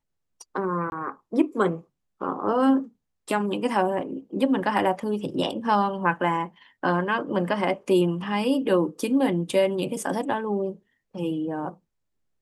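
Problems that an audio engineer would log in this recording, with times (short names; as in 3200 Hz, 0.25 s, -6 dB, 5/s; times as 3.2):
0.9–0.92 gap 21 ms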